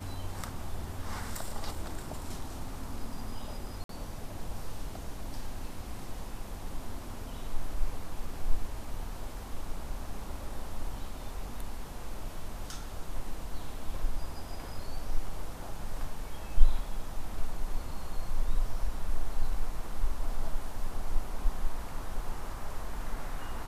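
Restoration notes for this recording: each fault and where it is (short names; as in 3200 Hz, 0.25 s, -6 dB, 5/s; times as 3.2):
3.84–3.89 gap 53 ms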